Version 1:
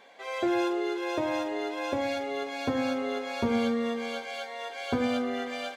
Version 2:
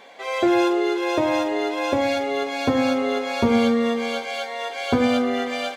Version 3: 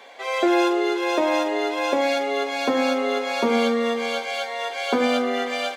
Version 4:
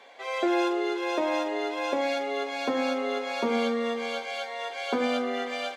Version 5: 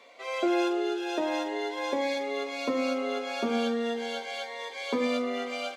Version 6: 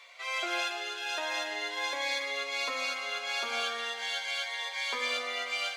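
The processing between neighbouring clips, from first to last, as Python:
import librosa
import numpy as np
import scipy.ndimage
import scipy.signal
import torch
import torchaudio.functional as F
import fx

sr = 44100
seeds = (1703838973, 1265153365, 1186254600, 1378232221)

y1 = fx.notch(x, sr, hz=1600.0, q=22.0)
y1 = F.gain(torch.from_numpy(y1), 8.5).numpy()
y2 = scipy.signal.sosfilt(scipy.signal.bessel(8, 330.0, 'highpass', norm='mag', fs=sr, output='sos'), y1)
y2 = F.gain(torch.from_numpy(y2), 1.5).numpy()
y3 = fx.high_shelf(y2, sr, hz=11000.0, db=-9.0)
y3 = F.gain(torch.from_numpy(y3), -6.0).numpy()
y4 = fx.notch_cascade(y3, sr, direction='rising', hz=0.38)
y5 = scipy.signal.sosfilt(scipy.signal.butter(2, 1300.0, 'highpass', fs=sr, output='sos'), y4)
y5 = fx.rev_freeverb(y5, sr, rt60_s=0.89, hf_ratio=0.6, predelay_ms=105, drr_db=6.5)
y5 = F.gain(torch.from_numpy(y5), 4.5).numpy()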